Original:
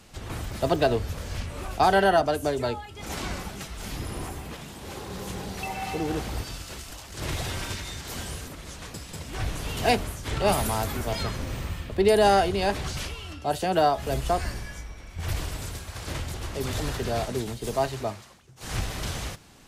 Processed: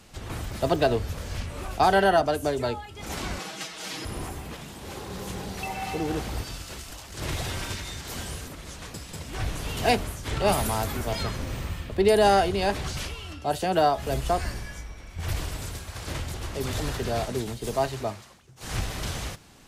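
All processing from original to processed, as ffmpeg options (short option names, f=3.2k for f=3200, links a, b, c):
-filter_complex "[0:a]asettb=1/sr,asplit=3[a][b][c];[a]atrim=end=3.394[d];[b]atrim=start=3.39:end=4.05,asetpts=PTS-STARTPTS,afade=t=in:d=0.004:c=qsin,afade=t=out:st=0.656:d=0.004:c=qsin,highpass=270,lowpass=4.6k,aemphasis=mode=production:type=75fm,aecho=1:1:6.3:0.83,atrim=end_sample=29106[e];[c]atrim=start=4.046[f];[d][e]acrossfade=d=0.004:c1=hsin:c2=qsin[g];[g][f]acrossfade=d=0.004:c1=qsin:c2=hsin"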